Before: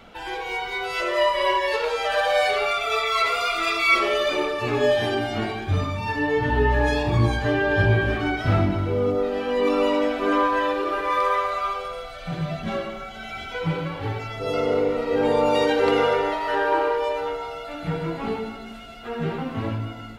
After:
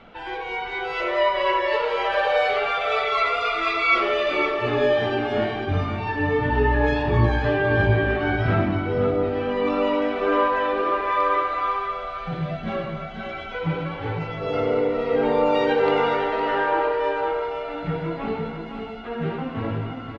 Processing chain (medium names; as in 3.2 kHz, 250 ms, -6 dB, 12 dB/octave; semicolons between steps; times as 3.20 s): low-pass 3.1 kHz 12 dB/octave; hum notches 50/100 Hz; delay 512 ms -7 dB